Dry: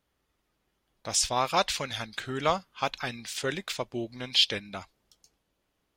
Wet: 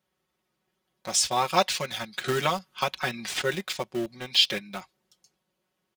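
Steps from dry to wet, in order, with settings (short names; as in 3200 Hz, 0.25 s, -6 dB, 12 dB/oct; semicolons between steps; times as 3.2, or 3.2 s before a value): HPF 74 Hz 24 dB/oct; comb 5.4 ms, depth 90%; in parallel at -8 dB: bit-crush 5-bit; 2.24–3.42 on the sum: three-band squash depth 100%; gain -3.5 dB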